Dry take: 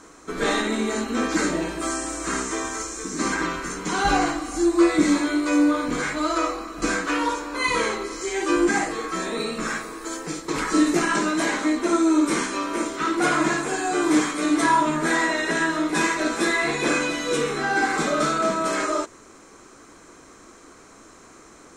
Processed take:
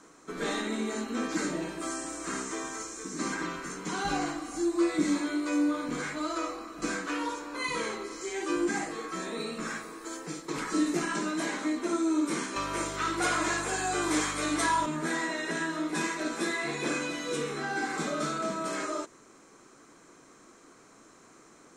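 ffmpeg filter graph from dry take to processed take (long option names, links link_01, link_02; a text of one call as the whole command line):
ffmpeg -i in.wav -filter_complex "[0:a]asettb=1/sr,asplit=3[link_01][link_02][link_03];[link_01]atrim=end=12.564[link_04];[link_02]atrim=start=12.56:end=14.86,asetpts=PTS-STARTPTS,afade=type=in:duration=0.004:curve=qsin,afade=type=out:start_time=2.296:duration=0.004:curve=qsin,highpass=480,acontrast=57,aeval=exprs='val(0)+0.0282*(sin(2*PI*50*n/s)+sin(2*PI*2*50*n/s)/2+sin(2*PI*3*50*n/s)/3+sin(2*PI*4*50*n/s)/4+sin(2*PI*5*50*n/s)/5)':channel_layout=same[link_05];[link_03]atrim=start=14.856[link_06];[link_04][link_05]acrossfade=duration=0.004:curve1=hsin:curve2=qsin[link_07];[link_07][link_06]acrossfade=duration=0.004:curve1=qsin:curve2=hsin,lowshelf=frequency=100:width_type=q:width=1.5:gain=-7,acrossover=split=340|3000[link_08][link_09][link_10];[link_09]acompressor=threshold=-27dB:ratio=1.5[link_11];[link_08][link_11][link_10]amix=inputs=3:normalize=0,volume=-8dB" out.wav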